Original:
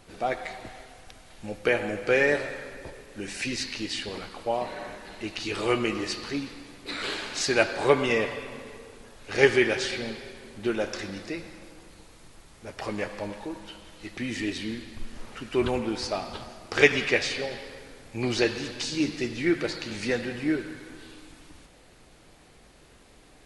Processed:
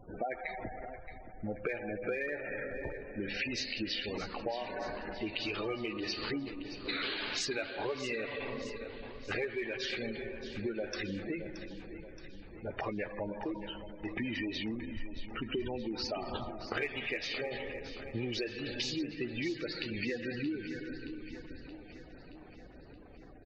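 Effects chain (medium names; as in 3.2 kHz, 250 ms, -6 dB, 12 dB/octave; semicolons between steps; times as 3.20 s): dynamic bell 3 kHz, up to +4 dB, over -42 dBFS, Q 0.97; level-controlled noise filter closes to 2.2 kHz, open at -23 dBFS; spectral gate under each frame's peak -15 dB strong; in parallel at -11 dB: overload inside the chain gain 17 dB; on the sum: compression 12:1, threshold -33 dBFS, peak gain reduction 23 dB; feedback delay 624 ms, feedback 59%, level -12 dB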